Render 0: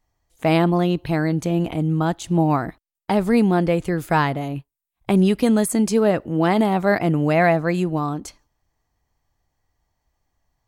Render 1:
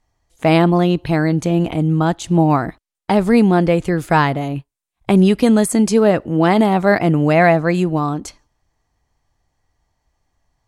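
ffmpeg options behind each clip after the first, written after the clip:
-af "lowpass=11000,volume=1.68"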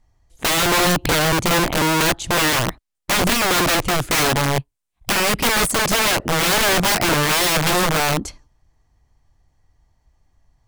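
-af "lowshelf=f=180:g=9.5,aeval=exprs='(mod(4.47*val(0)+1,2)-1)/4.47':c=same"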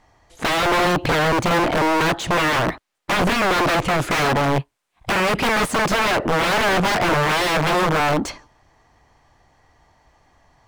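-filter_complex "[0:a]asplit=2[s0][s1];[s1]highpass=f=720:p=1,volume=17.8,asoftclip=type=tanh:threshold=0.224[s2];[s0][s2]amix=inputs=2:normalize=0,lowpass=f=1800:p=1,volume=0.501"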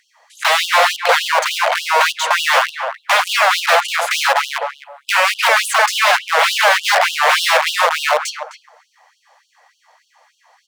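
-filter_complex "[0:a]asplit=2[s0][s1];[s1]adelay=258,lowpass=f=1100:p=1,volume=0.562,asplit=2[s2][s3];[s3]adelay=258,lowpass=f=1100:p=1,volume=0.2,asplit=2[s4][s5];[s5]adelay=258,lowpass=f=1100:p=1,volume=0.2[s6];[s2][s4][s6]amix=inputs=3:normalize=0[s7];[s0][s7]amix=inputs=2:normalize=0,afftfilt=real='re*gte(b*sr/1024,460*pow(2800/460,0.5+0.5*sin(2*PI*3.4*pts/sr)))':imag='im*gte(b*sr/1024,460*pow(2800/460,0.5+0.5*sin(2*PI*3.4*pts/sr)))':win_size=1024:overlap=0.75,volume=2.37"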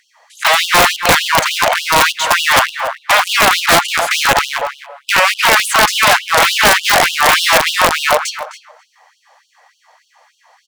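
-af "aeval=exprs='(mod(1.78*val(0)+1,2)-1)/1.78':c=same,aecho=1:1:282:0.106,volume=1.41"

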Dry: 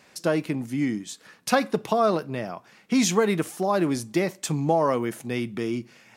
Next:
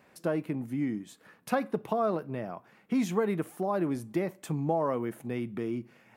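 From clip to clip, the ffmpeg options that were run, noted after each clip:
-filter_complex "[0:a]asplit=2[s0][s1];[s1]acompressor=threshold=0.0282:ratio=6,volume=0.794[s2];[s0][s2]amix=inputs=2:normalize=0,equalizer=f=5600:w=0.59:g=-14.5,volume=0.422"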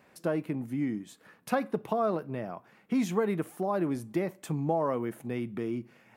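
-af anull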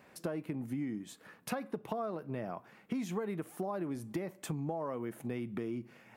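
-af "acompressor=threshold=0.0178:ratio=6,volume=1.12"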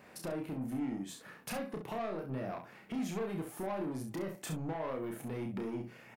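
-filter_complex "[0:a]asoftclip=type=tanh:threshold=0.0141,asplit=2[s0][s1];[s1]aecho=0:1:31|66:0.631|0.398[s2];[s0][s2]amix=inputs=2:normalize=0,volume=1.26"

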